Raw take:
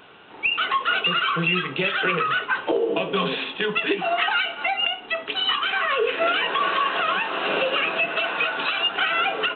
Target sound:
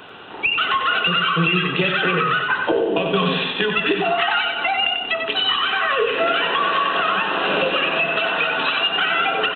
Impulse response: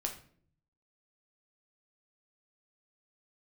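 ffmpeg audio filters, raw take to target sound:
-filter_complex "[0:a]bandreject=f=2200:w=11,aecho=1:1:93|186|279|372|465:0.501|0.195|0.0762|0.0297|0.0116,acrossover=split=220[s0][s1];[s1]acompressor=threshold=0.0355:ratio=2[s2];[s0][s2]amix=inputs=2:normalize=0,volume=2.51"

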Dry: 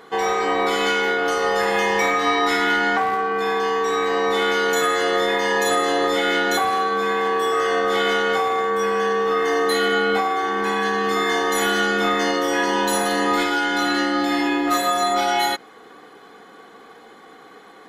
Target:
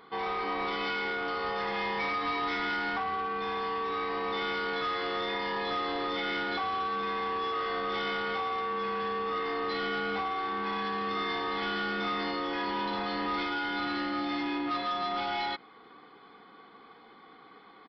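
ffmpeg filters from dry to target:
-af "aecho=1:1:0.9:0.39,aresample=11025,asoftclip=type=tanh:threshold=0.126,aresample=44100,volume=0.355"

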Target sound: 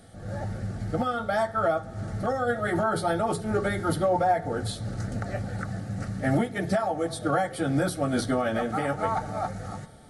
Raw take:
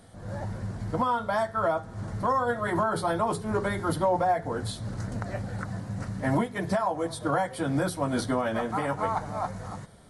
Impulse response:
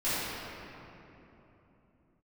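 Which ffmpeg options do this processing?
-filter_complex "[0:a]asuperstop=centerf=1000:order=20:qfactor=5.2,asplit=2[s0][s1];[1:a]atrim=start_sample=2205[s2];[s1][s2]afir=irnorm=-1:irlink=0,volume=0.0237[s3];[s0][s3]amix=inputs=2:normalize=0,volume=1.19"

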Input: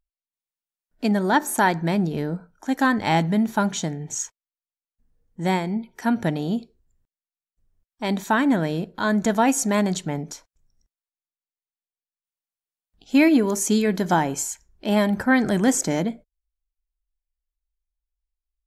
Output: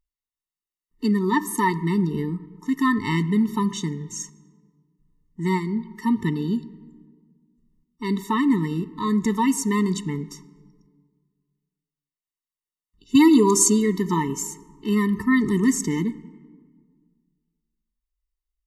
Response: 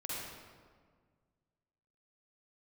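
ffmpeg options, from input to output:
-filter_complex "[0:a]asettb=1/sr,asplit=3[s0][s1][s2];[s0]atrim=end=13.154[s3];[s1]atrim=start=13.15:end=13.7,asetpts=PTS-STARTPTS,afade=t=in:d=0.004:c=qsin,afade=t=out:st=0.546:d=0.004:c=qsin,equalizer=f=125:t=o:w=1:g=12,equalizer=f=250:t=o:w=1:g=-3,equalizer=f=500:t=o:w=1:g=6,equalizer=f=1000:t=o:w=1:g=9,equalizer=f=2000:t=o:w=1:g=-6,equalizer=f=4000:t=o:w=1:g=11,equalizer=f=8000:t=o:w=1:g=11[s4];[s2]atrim=start=13.696[s5];[s3][s4]acrossfade=d=0.004:c1=hsin:c2=qsin[s6];[s6][s5]acrossfade=d=0.004:c1=qsin:c2=hsin,asplit=2[s7][s8];[1:a]atrim=start_sample=2205,highshelf=f=3800:g=-7.5[s9];[s8][s9]afir=irnorm=-1:irlink=0,volume=0.141[s10];[s7][s10]amix=inputs=2:normalize=0,afftfilt=real='re*eq(mod(floor(b*sr/1024/440),2),0)':imag='im*eq(mod(floor(b*sr/1024/440),2),0)':win_size=1024:overlap=0.75"

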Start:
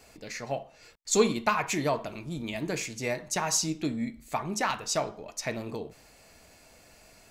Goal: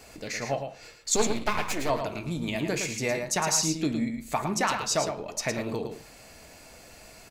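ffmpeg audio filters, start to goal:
-filter_complex "[0:a]asplit=2[s0][s1];[s1]acompressor=threshold=0.0158:ratio=6,volume=0.891[s2];[s0][s2]amix=inputs=2:normalize=0,asettb=1/sr,asplit=3[s3][s4][s5];[s3]atrim=end=1.164[s6];[s4]atrim=start=1.16:end=1.9,asetpts=PTS-STARTPTS,afade=t=in:d=0.004:c=qsin,afade=t=out:st=0.736:d=0.004:c=qsin,aeval=exprs='max(val(0),0)':c=same[s7];[s5]atrim=start=1.896[s8];[s6][s7]acrossfade=d=0.004:c1=hsin:c2=qsin[s9];[s9][s8]acrossfade=d=0.004:c1=qsin:c2=hsin,aecho=1:1:110:0.447"

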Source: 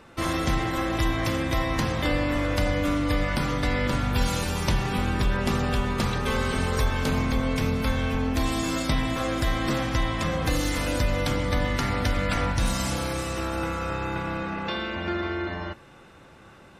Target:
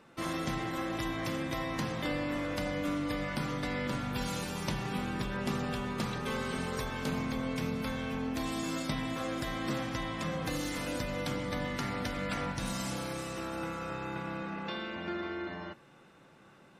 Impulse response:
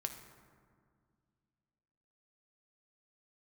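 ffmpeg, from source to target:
-af "lowshelf=f=110:t=q:w=1.5:g=-9,volume=0.376"

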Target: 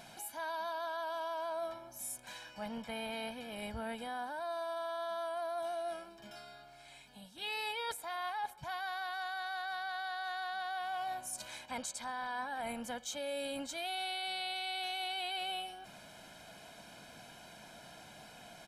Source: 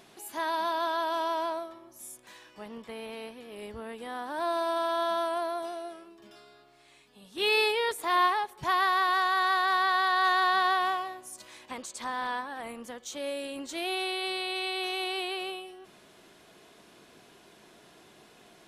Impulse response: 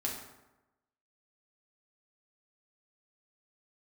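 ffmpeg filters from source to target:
-af "aecho=1:1:1.3:0.78,areverse,acompressor=threshold=0.0141:ratio=12,areverse,volume=1.12"

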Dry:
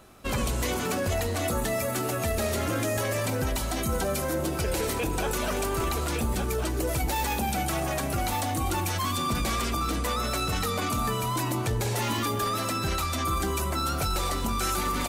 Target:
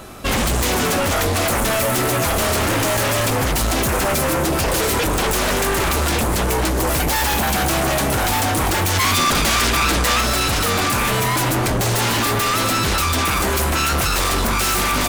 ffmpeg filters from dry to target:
-filter_complex "[0:a]aeval=exprs='0.168*sin(PI/2*3.98*val(0)/0.168)':c=same,asettb=1/sr,asplit=3[s0][s1][s2];[s0]atrim=end=8.954[s3];[s1]atrim=start=8.95:end=10.21,asetpts=PTS-STARTPTS,afade=t=in:d=0.004:c=qsin,afade=t=out:st=1.256:d=0.004:c=qsin,equalizer=f=3300:w=0.37:g=3.5[s4];[s2]atrim=start=10.206[s5];[s3][s4]acrossfade=d=0.004:c1=hsin:c2=qsin[s6];[s6][s5]acrossfade=d=0.004:c1=qsin:c2=hsin"

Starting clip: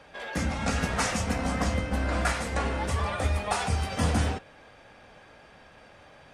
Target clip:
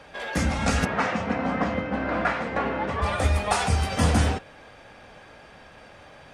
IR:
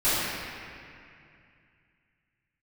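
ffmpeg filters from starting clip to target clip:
-filter_complex "[0:a]asplit=3[s0][s1][s2];[s0]afade=t=out:st=0.84:d=0.02[s3];[s1]highpass=160,lowpass=2300,afade=t=in:st=0.84:d=0.02,afade=t=out:st=3.01:d=0.02[s4];[s2]afade=t=in:st=3.01:d=0.02[s5];[s3][s4][s5]amix=inputs=3:normalize=0,volume=1.68"

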